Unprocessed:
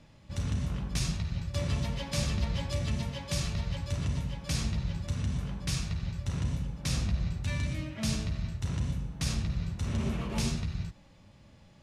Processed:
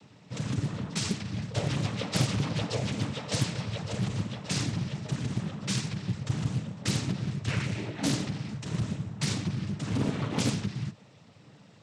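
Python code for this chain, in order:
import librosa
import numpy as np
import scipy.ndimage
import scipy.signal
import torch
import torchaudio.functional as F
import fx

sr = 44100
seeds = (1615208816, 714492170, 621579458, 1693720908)

y = fx.noise_vocoder(x, sr, seeds[0], bands=12)
y = fx.doppler_dist(y, sr, depth_ms=0.8)
y = y * 10.0 ** (4.5 / 20.0)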